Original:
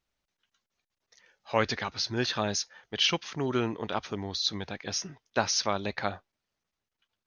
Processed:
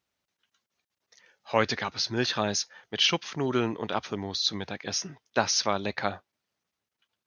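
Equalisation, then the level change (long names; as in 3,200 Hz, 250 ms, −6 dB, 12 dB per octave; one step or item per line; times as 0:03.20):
high-pass filter 97 Hz
+2.0 dB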